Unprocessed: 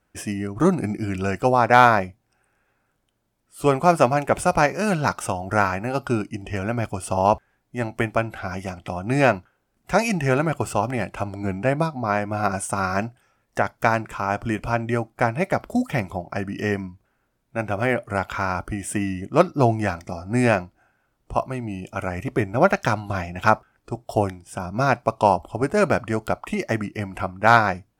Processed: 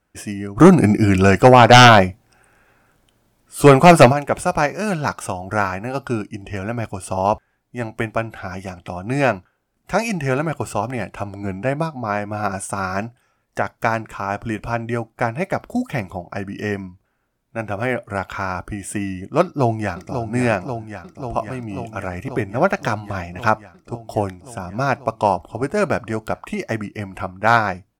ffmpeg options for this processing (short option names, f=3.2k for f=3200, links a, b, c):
-filter_complex "[0:a]asplit=3[a][b][c];[a]afade=t=out:st=0.57:d=0.02[d];[b]aeval=exprs='0.891*sin(PI/2*2.51*val(0)/0.891)':c=same,afade=t=in:st=0.57:d=0.02,afade=t=out:st=4.11:d=0.02[e];[c]afade=t=in:st=4.11:d=0.02[f];[d][e][f]amix=inputs=3:normalize=0,asplit=2[g][h];[h]afade=t=in:st=19.42:d=0.01,afade=t=out:st=20.3:d=0.01,aecho=0:1:540|1080|1620|2160|2700|3240|3780|4320|4860|5400|5940|6480:0.421697|0.337357|0.269886|0.215909|0.172727|0.138182|0.110545|0.0884362|0.0707489|0.0565991|0.0452793|0.0362235[i];[g][i]amix=inputs=2:normalize=0"